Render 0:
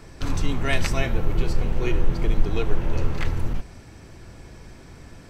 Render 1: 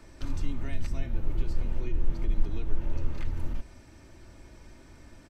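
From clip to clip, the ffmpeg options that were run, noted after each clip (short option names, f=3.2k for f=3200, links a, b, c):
-filter_complex "[0:a]aecho=1:1:3.3:0.42,acrossover=split=260[a][b];[b]acompressor=threshold=-37dB:ratio=6[c];[a][c]amix=inputs=2:normalize=0,volume=-8dB"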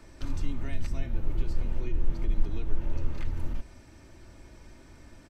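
-af anull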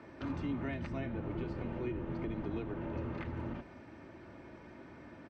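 -af "highpass=150,lowpass=2.1k,volume=4dB"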